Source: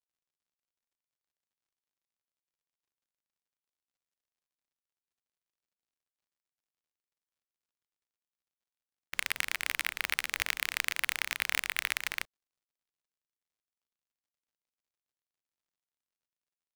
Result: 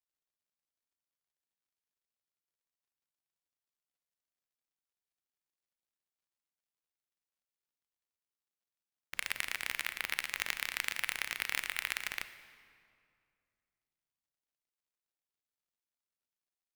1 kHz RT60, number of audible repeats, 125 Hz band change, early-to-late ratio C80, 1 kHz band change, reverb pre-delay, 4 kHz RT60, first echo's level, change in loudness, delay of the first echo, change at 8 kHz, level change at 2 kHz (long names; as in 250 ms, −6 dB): 2.2 s, no echo audible, −3.5 dB, 13.0 dB, −4.0 dB, 33 ms, 1.6 s, no echo audible, −3.5 dB, no echo audible, −4.0 dB, −3.5 dB